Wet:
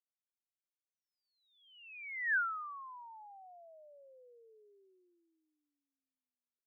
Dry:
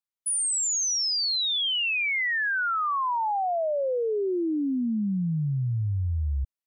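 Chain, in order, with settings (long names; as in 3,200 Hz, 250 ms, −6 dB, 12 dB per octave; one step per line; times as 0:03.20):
source passing by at 0:02.35, 41 m/s, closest 2.1 metres
single-sideband voice off tune +180 Hz 230–2,400 Hz
level −3 dB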